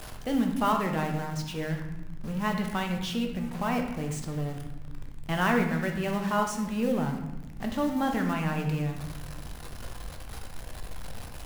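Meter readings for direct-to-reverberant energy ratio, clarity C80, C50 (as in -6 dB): 3.0 dB, 8.0 dB, 6.0 dB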